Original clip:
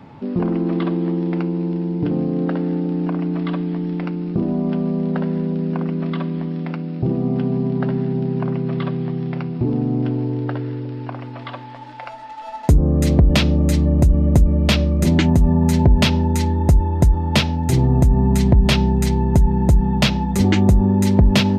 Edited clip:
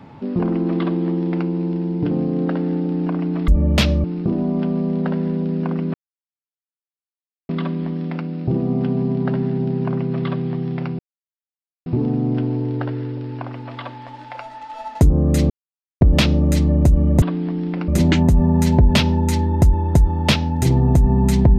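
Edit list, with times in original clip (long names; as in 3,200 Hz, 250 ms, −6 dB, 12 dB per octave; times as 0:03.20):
0:03.48–0:04.14: swap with 0:14.39–0:14.95
0:06.04: splice in silence 1.55 s
0:09.54: splice in silence 0.87 s
0:13.18: splice in silence 0.51 s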